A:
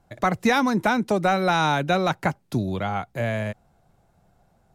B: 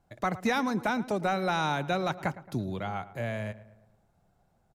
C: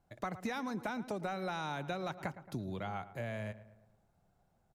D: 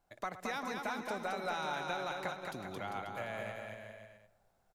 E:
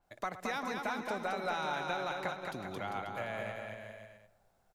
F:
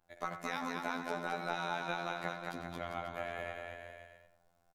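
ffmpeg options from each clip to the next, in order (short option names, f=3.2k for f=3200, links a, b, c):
-filter_complex "[0:a]asplit=2[a][b];[b]adelay=111,lowpass=f=2.2k:p=1,volume=-16dB,asplit=2[c][d];[d]adelay=111,lowpass=f=2.2k:p=1,volume=0.52,asplit=2[e][f];[f]adelay=111,lowpass=f=2.2k:p=1,volume=0.52,asplit=2[g][h];[h]adelay=111,lowpass=f=2.2k:p=1,volume=0.52,asplit=2[i][j];[j]adelay=111,lowpass=f=2.2k:p=1,volume=0.52[k];[a][c][e][g][i][k]amix=inputs=6:normalize=0,volume=-7.5dB"
-af "acompressor=threshold=-30dB:ratio=6,volume=-4.5dB"
-af "equalizer=f=120:w=0.45:g=-12.5,aecho=1:1:220|396|536.8|649.4|739.6:0.631|0.398|0.251|0.158|0.1,volume=1.5dB"
-af "adynamicequalizer=threshold=0.00178:dfrequency=4800:dqfactor=0.7:tfrequency=4800:tqfactor=0.7:attack=5:release=100:ratio=0.375:range=2:mode=cutabove:tftype=highshelf,volume=2dB"
-filter_complex "[0:a]afftfilt=real='hypot(re,im)*cos(PI*b)':imag='0':win_size=2048:overlap=0.75,asplit=2[a][b];[b]adelay=90,highpass=300,lowpass=3.4k,asoftclip=type=hard:threshold=-29dB,volume=-9dB[c];[a][c]amix=inputs=2:normalize=0,volume=1.5dB"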